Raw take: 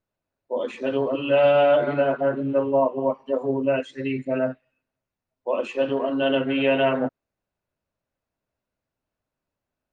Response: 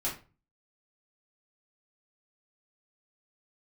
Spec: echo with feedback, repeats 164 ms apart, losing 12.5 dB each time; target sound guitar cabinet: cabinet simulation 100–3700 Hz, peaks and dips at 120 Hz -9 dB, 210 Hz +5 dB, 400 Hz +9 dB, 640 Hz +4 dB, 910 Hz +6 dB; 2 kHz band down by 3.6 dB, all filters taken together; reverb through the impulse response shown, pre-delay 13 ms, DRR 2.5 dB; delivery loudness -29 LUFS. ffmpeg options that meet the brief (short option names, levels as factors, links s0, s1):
-filter_complex "[0:a]equalizer=f=2000:t=o:g=-6,aecho=1:1:164|328|492:0.237|0.0569|0.0137,asplit=2[s0][s1];[1:a]atrim=start_sample=2205,adelay=13[s2];[s1][s2]afir=irnorm=-1:irlink=0,volume=0.422[s3];[s0][s3]amix=inputs=2:normalize=0,highpass=100,equalizer=f=120:t=q:w=4:g=-9,equalizer=f=210:t=q:w=4:g=5,equalizer=f=400:t=q:w=4:g=9,equalizer=f=640:t=q:w=4:g=4,equalizer=f=910:t=q:w=4:g=6,lowpass=f=3700:w=0.5412,lowpass=f=3700:w=1.3066,volume=0.251"